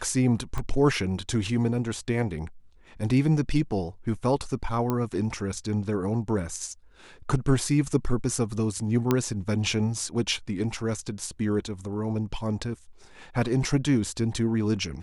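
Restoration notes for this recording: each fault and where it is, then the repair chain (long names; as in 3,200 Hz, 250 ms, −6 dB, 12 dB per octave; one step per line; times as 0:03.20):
0:00.58: click −18 dBFS
0:04.90: click −14 dBFS
0:09.11: click −9 dBFS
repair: click removal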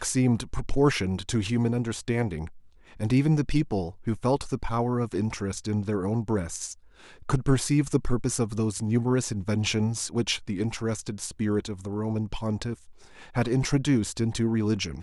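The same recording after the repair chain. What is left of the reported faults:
none of them is left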